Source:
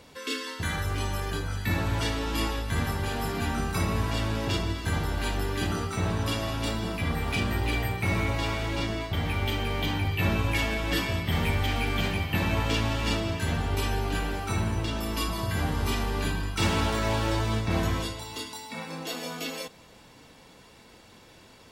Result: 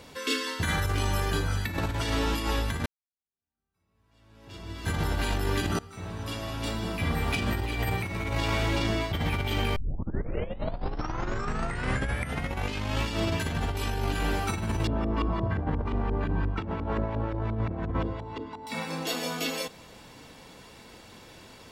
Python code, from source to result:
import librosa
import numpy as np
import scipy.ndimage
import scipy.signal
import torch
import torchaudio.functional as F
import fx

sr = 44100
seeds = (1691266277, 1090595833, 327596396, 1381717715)

y = fx.filter_lfo_lowpass(x, sr, shape='saw_up', hz=5.7, low_hz=470.0, high_hz=2000.0, q=0.83, at=(14.87, 18.67))
y = fx.edit(y, sr, fx.fade_in_span(start_s=2.86, length_s=2.11, curve='exp'),
    fx.fade_in_from(start_s=5.79, length_s=1.89, floor_db=-22.0),
    fx.tape_start(start_s=9.76, length_s=3.28), tone=tone)
y = fx.over_compress(y, sr, threshold_db=-29.0, ratio=-0.5)
y = y * librosa.db_to_amplitude(1.5)